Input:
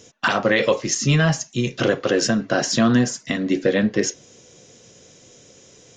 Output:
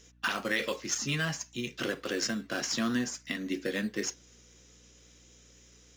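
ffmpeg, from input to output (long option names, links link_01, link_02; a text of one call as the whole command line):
ffmpeg -i in.wav -filter_complex "[0:a]asplit=2[link_01][link_02];[link_02]acrusher=samples=9:mix=1:aa=0.000001:lfo=1:lforange=5.4:lforate=0.54,volume=-10dB[link_03];[link_01][link_03]amix=inputs=2:normalize=0,highpass=280,equalizer=frequency=630:width_type=o:width=2:gain=-13,aeval=exprs='val(0)+0.002*(sin(2*PI*60*n/s)+sin(2*PI*2*60*n/s)/2+sin(2*PI*3*60*n/s)/3+sin(2*PI*4*60*n/s)/4+sin(2*PI*5*60*n/s)/5)':channel_layout=same,highshelf=frequency=7500:gain=-6.5,volume=-6.5dB" out.wav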